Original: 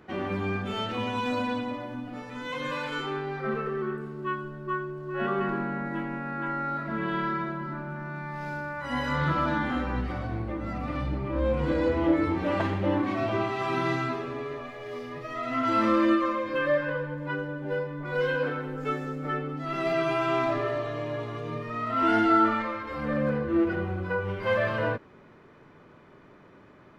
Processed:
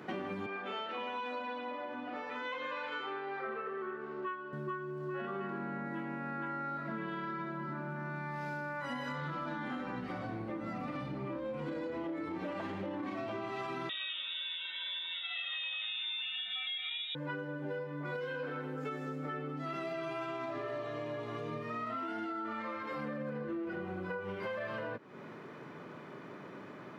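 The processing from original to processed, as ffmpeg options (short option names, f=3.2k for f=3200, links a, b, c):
-filter_complex "[0:a]asettb=1/sr,asplit=3[a][b][c];[a]atrim=end=0.464[d];[b]atrim=start=0.46:end=4.53,asetpts=PTS-STARTPTS,afade=t=in:d=0.004:c=qsin,afade=t=out:st=4.066:d=0.004:c=qsin,highpass=450,lowpass=3.2k[e];[c]atrim=start=4.526[f];[d][e]acrossfade=d=0.004:c1=hsin:c2=qsin[g];[g][f]acrossfade=d=0.004:c1=qsin:c2=hsin,asettb=1/sr,asplit=3[h][i][j];[h]atrim=end=13.894[k];[i]atrim=start=13.89:end=17.15,asetpts=PTS-STARTPTS,afade=t=in:d=0.004:c=qsin,afade=t=out:st=3.256:d=0.004:c=qsin,lowpass=f=3.3k:t=q:w=0.5098,lowpass=f=3.3k:t=q:w=0.6013,lowpass=f=3.3k:t=q:w=0.9,lowpass=f=3.3k:t=q:w=2.563,afreqshift=-3900[l];[j]atrim=start=17.146[m];[k][l]acrossfade=d=0.004:c1=hsin:c2=qsin[n];[n][m]acrossfade=d=0.004:c1=qsin:c2=hsin,alimiter=limit=-21.5dB:level=0:latency=1:release=53,highpass=f=130:w=0.5412,highpass=f=130:w=1.3066,acompressor=threshold=-43dB:ratio=6,volume=5.5dB"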